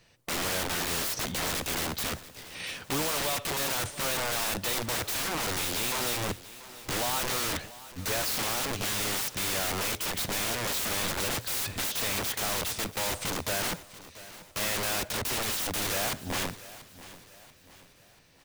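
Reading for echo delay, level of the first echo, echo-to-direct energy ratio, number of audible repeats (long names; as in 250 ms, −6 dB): 686 ms, −17.0 dB, −16.0 dB, 3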